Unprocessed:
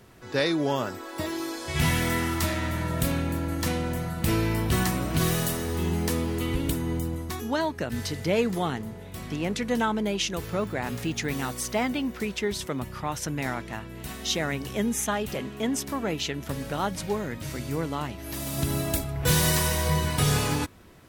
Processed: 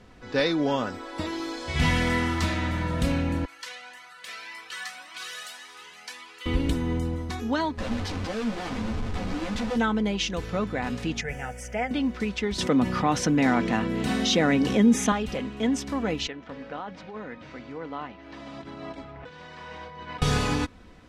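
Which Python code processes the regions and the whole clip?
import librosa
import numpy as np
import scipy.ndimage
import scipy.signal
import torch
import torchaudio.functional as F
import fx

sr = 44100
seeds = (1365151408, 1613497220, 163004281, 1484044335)

y = fx.chain(x, sr, fx.highpass(hz=1400.0, slope=12),
    fx.comb_cascade(direction='rising', hz=1.8), at=(3.45, 6.46))
y = fx.chain(y, sr, fx.schmitt(flips_db=-39.0),
    fx.ensemble(), at=(7.77, 9.76))
y = fx.chain(y, sr, fx.peak_eq(hz=3800.0, db=-5.5, octaves=0.53),
    fx.fixed_phaser(hz=1100.0, stages=6), at=(11.21, 11.91))
y = fx.chain(y, sr, fx.highpass(hz=210.0, slope=12),
    fx.low_shelf(hz=380.0, db=11.0),
    fx.env_flatten(amount_pct=50), at=(12.58, 15.12))
y = fx.chain(y, sr, fx.over_compress(threshold_db=-29.0, ratio=-1.0),
    fx.highpass(hz=770.0, slope=6),
    fx.spacing_loss(db_at_10k=33), at=(16.27, 20.22))
y = scipy.signal.sosfilt(scipy.signal.butter(2, 5600.0, 'lowpass', fs=sr, output='sos'), y)
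y = fx.low_shelf(y, sr, hz=67.0, db=7.5)
y = y + 0.43 * np.pad(y, (int(4.0 * sr / 1000.0), 0))[:len(y)]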